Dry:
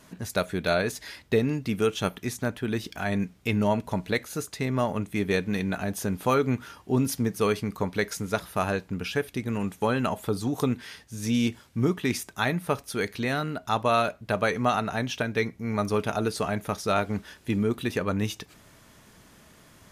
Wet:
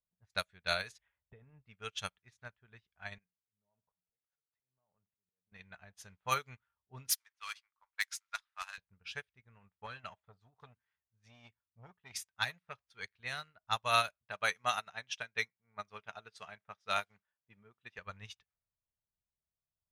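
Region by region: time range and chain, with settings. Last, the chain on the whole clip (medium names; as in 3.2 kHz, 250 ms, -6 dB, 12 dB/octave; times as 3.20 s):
0.98–1.64 s: compression 16:1, threshold -25 dBFS + tilt shelf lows +5 dB, about 1.5 kHz + careless resampling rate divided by 6×, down none, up filtered
3.18–5.52 s: high-pass 130 Hz + compression 4:1, threshold -31 dBFS + slow attack 361 ms
7.09–8.78 s: high-pass 960 Hz 24 dB/octave + companded quantiser 4-bit
9.86–13.20 s: high-pass 59 Hz + transformer saturation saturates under 640 Hz
14.22–17.99 s: high-pass 150 Hz + band-stop 4.3 kHz, Q 23
whole clip: amplifier tone stack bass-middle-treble 10-0-10; level-controlled noise filter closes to 490 Hz, open at -30.5 dBFS; upward expansion 2.5:1, over -53 dBFS; trim +5.5 dB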